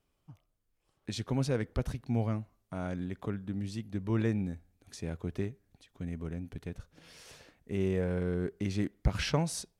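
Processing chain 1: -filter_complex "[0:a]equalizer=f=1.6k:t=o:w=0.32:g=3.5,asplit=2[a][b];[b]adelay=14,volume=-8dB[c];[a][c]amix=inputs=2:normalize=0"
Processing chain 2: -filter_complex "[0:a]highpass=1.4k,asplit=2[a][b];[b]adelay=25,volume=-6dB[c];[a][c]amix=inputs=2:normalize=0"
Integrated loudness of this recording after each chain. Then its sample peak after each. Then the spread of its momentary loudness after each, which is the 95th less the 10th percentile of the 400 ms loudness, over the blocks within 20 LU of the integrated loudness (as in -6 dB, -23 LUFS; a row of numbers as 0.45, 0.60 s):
-34.5, -45.0 LUFS; -13.0, -22.0 dBFS; 18, 19 LU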